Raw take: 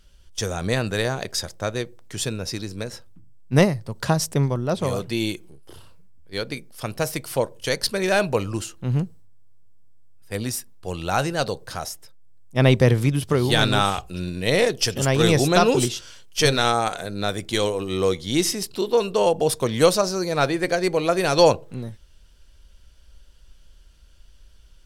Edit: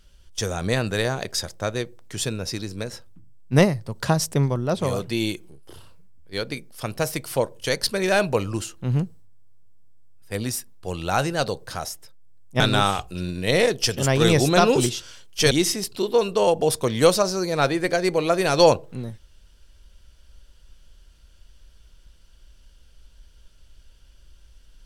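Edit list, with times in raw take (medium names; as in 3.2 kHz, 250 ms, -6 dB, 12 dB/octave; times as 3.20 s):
12.60–13.59 s: delete
16.50–18.30 s: delete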